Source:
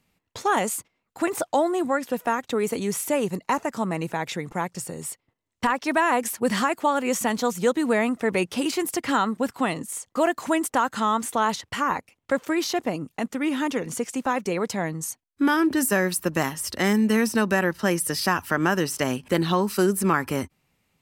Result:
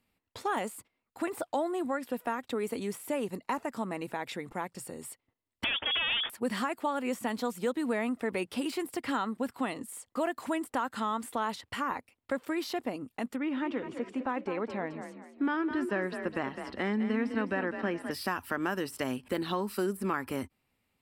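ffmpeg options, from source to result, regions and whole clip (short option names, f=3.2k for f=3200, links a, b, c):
-filter_complex "[0:a]asettb=1/sr,asplit=3[a][b][c];[a]atrim=end=5.644[d];[b]atrim=start=5.64:end=6.3,asetpts=PTS-STARTPTS,afade=t=in:d=0.004:c=qsin,afade=t=out:st=0.656:d=0.004:c=qsin,acompressor=threshold=-26dB:ratio=8:attack=3.2:release=140:knee=1:detection=peak,aeval=exprs='0.158*sin(PI/2*4.47*val(0)/0.158)':c=same,lowpass=f=3.1k:t=q:w=0.5098,lowpass=f=3.1k:t=q:w=0.6013,lowpass=f=3.1k:t=q:w=0.9,lowpass=f=3.1k:t=q:w=2.563,afreqshift=-3600[e];[c]atrim=start=6.296[f];[d][e]acrossfade=d=0.004:c1=hsin:c2=qsin[g];[g][f]acrossfade=d=0.004:c1=qsin:c2=hsin,asettb=1/sr,asplit=3[h][i][j];[h]atrim=end=13.364[k];[i]atrim=start=13.36:end=18.11,asetpts=PTS-STARTPTS,afade=t=in:d=0.004:c=qsin,afade=t=out:st=4.746:d=0.004:c=qsin,lowpass=2.8k,asplit=5[l][m][n][o][p];[m]adelay=207,afreqshift=37,volume=-10dB[q];[n]adelay=414,afreqshift=74,volume=-18.6dB[r];[o]adelay=621,afreqshift=111,volume=-27.3dB[s];[p]adelay=828,afreqshift=148,volume=-35.9dB[t];[l][q][r][s][t]amix=inputs=5:normalize=0,atrim=end_sample=209475[u];[j]atrim=start=18.106[v];[k][u]acrossfade=d=0.004:c1=hsin:c2=qsin[w];[w][v]acrossfade=d=0.004:c1=qsin:c2=hsin,deesser=0.55,equalizer=f=160:t=o:w=0.33:g=-9,equalizer=f=250:t=o:w=0.33:g=3,equalizer=f=6.3k:t=o:w=0.33:g=-10,acompressor=threshold=-25dB:ratio=1.5,volume=-6.5dB"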